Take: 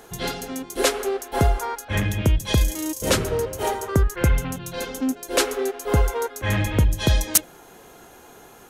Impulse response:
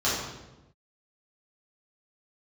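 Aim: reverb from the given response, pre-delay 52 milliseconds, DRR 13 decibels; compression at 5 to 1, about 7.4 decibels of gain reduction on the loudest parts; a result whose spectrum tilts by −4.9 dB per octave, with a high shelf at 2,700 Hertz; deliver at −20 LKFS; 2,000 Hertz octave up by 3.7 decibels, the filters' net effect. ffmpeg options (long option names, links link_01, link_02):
-filter_complex "[0:a]equalizer=frequency=2000:width_type=o:gain=7.5,highshelf=frequency=2700:gain=-7,acompressor=threshold=-22dB:ratio=5,asplit=2[link_01][link_02];[1:a]atrim=start_sample=2205,adelay=52[link_03];[link_02][link_03]afir=irnorm=-1:irlink=0,volume=-26.5dB[link_04];[link_01][link_04]amix=inputs=2:normalize=0,volume=7.5dB"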